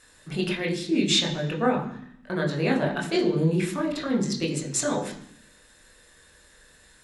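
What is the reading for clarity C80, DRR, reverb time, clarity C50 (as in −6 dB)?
11.5 dB, −1.0 dB, 0.65 s, 9.5 dB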